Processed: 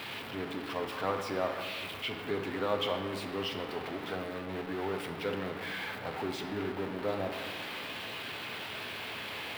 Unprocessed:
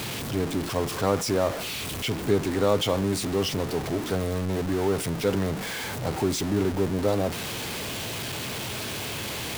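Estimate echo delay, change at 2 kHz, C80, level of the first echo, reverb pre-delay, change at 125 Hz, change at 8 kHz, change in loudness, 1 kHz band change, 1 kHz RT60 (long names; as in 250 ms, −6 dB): no echo audible, −3.5 dB, 8.0 dB, no echo audible, 3 ms, −15.5 dB, −19.5 dB, −9.0 dB, −5.0 dB, 1.8 s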